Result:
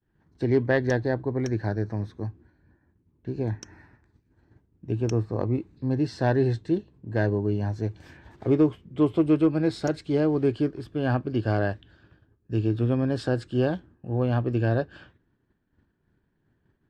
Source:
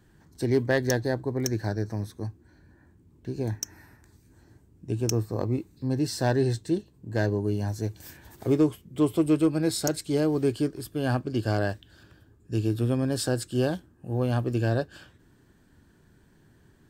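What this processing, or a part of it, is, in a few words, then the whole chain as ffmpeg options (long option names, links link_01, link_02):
hearing-loss simulation: -af "lowpass=2900,agate=range=-33dB:threshold=-49dB:ratio=3:detection=peak,volume=1.5dB"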